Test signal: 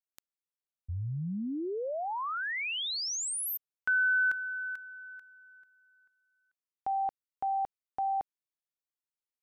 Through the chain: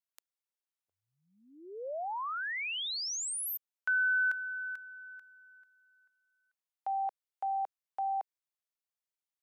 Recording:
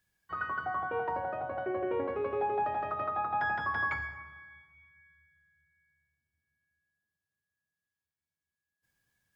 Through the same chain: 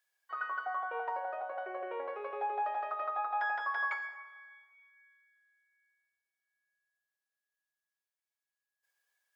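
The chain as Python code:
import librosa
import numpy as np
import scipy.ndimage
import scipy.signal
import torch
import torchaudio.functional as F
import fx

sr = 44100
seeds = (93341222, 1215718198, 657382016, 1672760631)

y = scipy.signal.sosfilt(scipy.signal.butter(4, 520.0, 'highpass', fs=sr, output='sos'), x)
y = y * 10.0 ** (-2.0 / 20.0)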